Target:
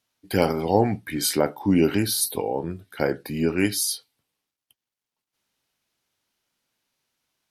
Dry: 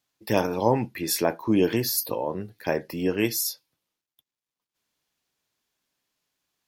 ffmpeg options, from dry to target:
-af "asetrate=39249,aresample=44100,volume=2dB"

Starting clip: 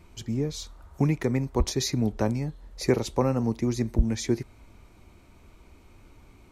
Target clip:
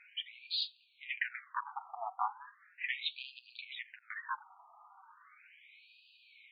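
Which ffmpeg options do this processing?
-af "flanger=delay=4.8:depth=3.6:regen=34:speed=0.42:shape=sinusoidal,asoftclip=type=tanh:threshold=-29.5dB,afftfilt=real='re*between(b*sr/1024,940*pow(3500/940,0.5+0.5*sin(2*PI*0.37*pts/sr))/1.41,940*pow(3500/940,0.5+0.5*sin(2*PI*0.37*pts/sr))*1.41)':imag='im*between(b*sr/1024,940*pow(3500/940,0.5+0.5*sin(2*PI*0.37*pts/sr))/1.41,940*pow(3500/940,0.5+0.5*sin(2*PI*0.37*pts/sr))*1.41)':win_size=1024:overlap=0.75,volume=11.5dB"

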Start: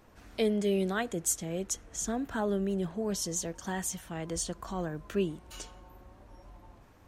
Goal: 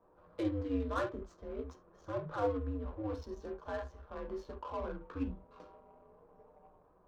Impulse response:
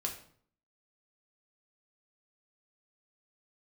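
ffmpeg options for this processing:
-filter_complex "[0:a]highpass=200,equalizer=f=240:t=q:w=4:g=-7,equalizer=f=340:t=q:w=4:g=-8,equalizer=f=650:t=q:w=4:g=6,equalizer=f=1.2k:t=q:w=4:g=7,equalizer=f=2.2k:t=q:w=4:g=-8,equalizer=f=3.1k:t=q:w=4:g=-9,lowpass=f=5.2k:w=0.5412,lowpass=f=5.2k:w=1.3066,afreqshift=-120[a];[1:a]atrim=start_sample=2205,atrim=end_sample=3969[b];[a][b]afir=irnorm=-1:irlink=0,adynamicsmooth=sensitivity=7.5:basefreq=1k,volume=-5dB"

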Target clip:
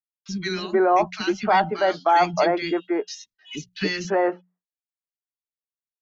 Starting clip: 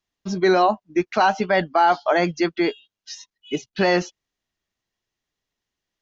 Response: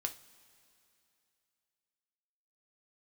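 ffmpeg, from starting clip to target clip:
-filter_complex "[0:a]bandreject=f=60:t=h:w=6,bandreject=f=120:t=h:w=6,bandreject=f=180:t=h:w=6,agate=range=-33dB:threshold=-46dB:ratio=3:detection=peak,acrossover=split=270|1700[a][b][c];[a]adelay=30[d];[b]adelay=310[e];[d][e][c]amix=inputs=3:normalize=0"

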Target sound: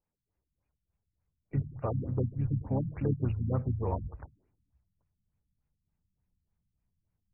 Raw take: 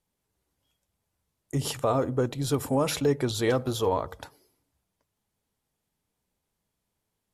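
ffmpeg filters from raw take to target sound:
-filter_complex "[0:a]asplit=3[a][b][c];[b]asetrate=33038,aresample=44100,atempo=1.33484,volume=-7dB[d];[c]asetrate=52444,aresample=44100,atempo=0.840896,volume=-18dB[e];[a][d][e]amix=inputs=3:normalize=0,asubboost=boost=6:cutoff=160,afftfilt=real='re*lt(b*sr/1024,240*pow(2900/240,0.5+0.5*sin(2*PI*3.4*pts/sr)))':imag='im*lt(b*sr/1024,240*pow(2900/240,0.5+0.5*sin(2*PI*3.4*pts/sr)))':win_size=1024:overlap=0.75,volume=-8dB"

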